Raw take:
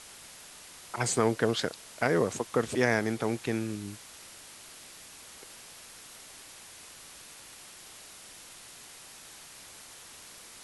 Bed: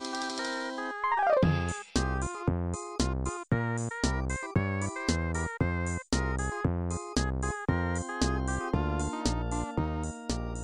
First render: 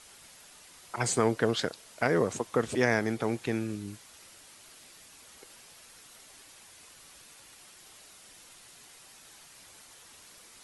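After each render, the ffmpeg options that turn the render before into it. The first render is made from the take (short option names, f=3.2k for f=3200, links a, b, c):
-af "afftdn=nr=6:nf=-50"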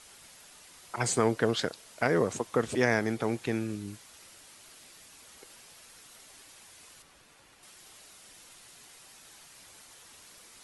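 -filter_complex "[0:a]asettb=1/sr,asplit=3[a][b][c];[a]atrim=end=7.024[d];[b]atrim=start=7.02:end=7.63,asetpts=PTS-STARTPTS,afade=t=in:d=0.004:c=qsin,afade=t=out:st=0.606:d=0.004:c=qsin,highshelf=f=3.3k:g=-10.5[e];[c]atrim=start=7.626[f];[d][e]acrossfade=d=0.004:c1=hsin:c2=qsin[g];[g][f]acrossfade=d=0.004:c1=qsin:c2=hsin"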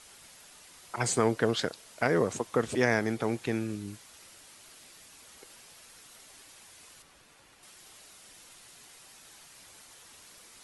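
-af anull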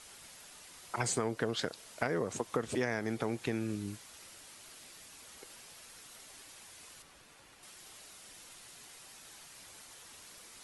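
-af "acompressor=threshold=-30dB:ratio=4"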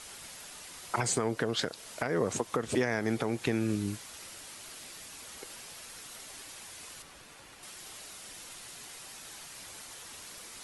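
-af "acontrast=64,alimiter=limit=-17dB:level=0:latency=1:release=244"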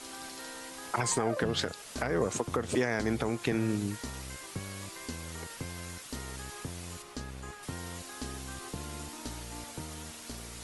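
-filter_complex "[1:a]volume=-12dB[a];[0:a][a]amix=inputs=2:normalize=0"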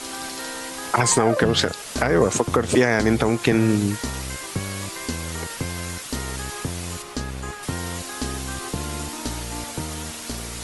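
-af "volume=11.5dB"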